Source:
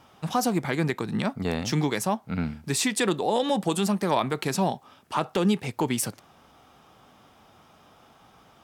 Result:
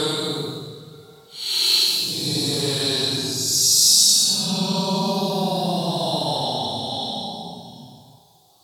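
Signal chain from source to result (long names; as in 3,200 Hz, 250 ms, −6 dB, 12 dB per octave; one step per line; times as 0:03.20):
high shelf with overshoot 2,900 Hz +12 dB, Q 3
extreme stretch with random phases 18×, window 0.05 s, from 0:04.33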